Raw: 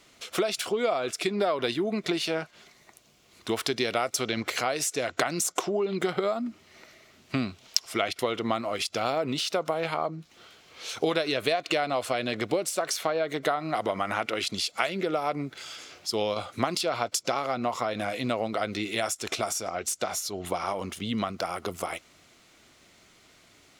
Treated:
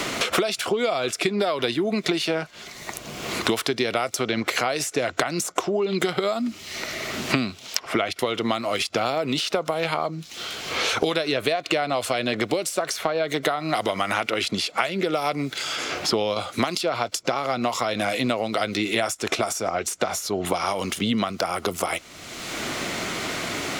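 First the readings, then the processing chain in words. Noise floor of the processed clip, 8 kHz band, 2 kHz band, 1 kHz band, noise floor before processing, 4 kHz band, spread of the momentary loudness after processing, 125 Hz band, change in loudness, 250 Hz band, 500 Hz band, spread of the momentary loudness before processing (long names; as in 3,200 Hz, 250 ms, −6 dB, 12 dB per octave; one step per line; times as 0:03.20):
−44 dBFS, +3.0 dB, +6.5 dB, +4.0 dB, −59 dBFS, +5.5 dB, 6 LU, +5.0 dB, +4.0 dB, +5.5 dB, +4.0 dB, 6 LU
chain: multiband upward and downward compressor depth 100%
level +3.5 dB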